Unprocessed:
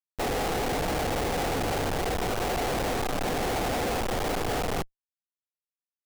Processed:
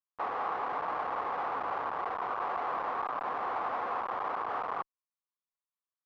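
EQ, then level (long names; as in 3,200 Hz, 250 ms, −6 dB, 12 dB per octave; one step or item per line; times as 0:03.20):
resonant band-pass 1,100 Hz, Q 5
high-frequency loss of the air 180 metres
+8.0 dB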